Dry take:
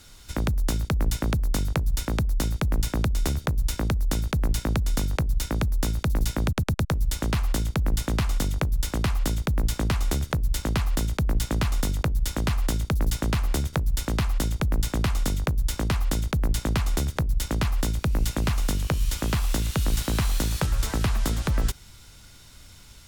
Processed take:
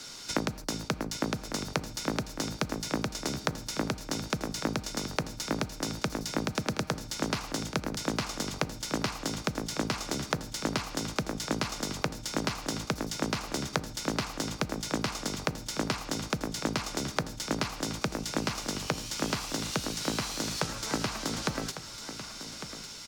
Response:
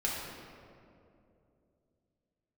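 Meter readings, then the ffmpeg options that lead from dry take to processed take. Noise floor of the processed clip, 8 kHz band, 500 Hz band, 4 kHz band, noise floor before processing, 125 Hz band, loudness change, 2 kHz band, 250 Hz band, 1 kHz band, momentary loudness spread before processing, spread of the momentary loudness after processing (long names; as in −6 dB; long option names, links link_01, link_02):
−44 dBFS, −1.0 dB, −1.0 dB, +0.5 dB, −48 dBFS, −12.5 dB, −6.5 dB, −1.0 dB, −3.0 dB, −0.5 dB, 1 LU, 2 LU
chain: -filter_complex "[0:a]bandreject=frequency=1800:width=24,asplit=2[link_01][link_02];[link_02]aecho=1:1:6.5:0.86[link_03];[1:a]atrim=start_sample=2205,afade=type=out:start_time=0.21:duration=0.01,atrim=end_sample=9702[link_04];[link_03][link_04]afir=irnorm=-1:irlink=0,volume=-21dB[link_05];[link_01][link_05]amix=inputs=2:normalize=0,aexciter=amount=3.9:drive=1.5:freq=4700,asplit=2[link_06][link_07];[link_07]alimiter=limit=-14dB:level=0:latency=1:release=35,volume=0dB[link_08];[link_06][link_08]amix=inputs=2:normalize=0,acompressor=threshold=-22dB:ratio=6,acrossover=split=160 6400:gain=0.0708 1 0.0708[link_09][link_10][link_11];[link_09][link_10][link_11]amix=inputs=3:normalize=0,aecho=1:1:1152:0.266"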